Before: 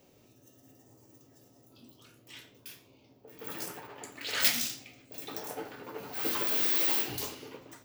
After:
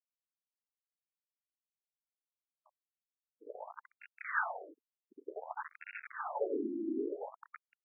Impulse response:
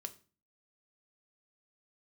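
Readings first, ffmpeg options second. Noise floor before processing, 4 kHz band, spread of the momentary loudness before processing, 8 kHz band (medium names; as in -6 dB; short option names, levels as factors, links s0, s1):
-62 dBFS, under -40 dB, 22 LU, under -40 dB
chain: -filter_complex "[0:a]asplit=2[s0][s1];[1:a]atrim=start_sample=2205,highshelf=f=2100:g=-6.5[s2];[s1][s2]afir=irnorm=-1:irlink=0,volume=2.11[s3];[s0][s3]amix=inputs=2:normalize=0,aeval=exprs='val(0)*gte(abs(val(0)),0.0316)':c=same,afftfilt=real='re*between(b*sr/1024,250*pow(2000/250,0.5+0.5*sin(2*PI*0.55*pts/sr))/1.41,250*pow(2000/250,0.5+0.5*sin(2*PI*0.55*pts/sr))*1.41)':imag='im*between(b*sr/1024,250*pow(2000/250,0.5+0.5*sin(2*PI*0.55*pts/sr))/1.41,250*pow(2000/250,0.5+0.5*sin(2*PI*0.55*pts/sr))*1.41)':win_size=1024:overlap=0.75,volume=1.12"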